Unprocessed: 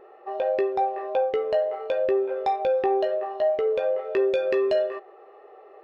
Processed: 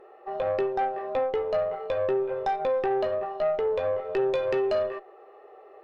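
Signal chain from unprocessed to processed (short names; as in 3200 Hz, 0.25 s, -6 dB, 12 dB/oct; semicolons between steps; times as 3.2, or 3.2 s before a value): tube stage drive 19 dB, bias 0.4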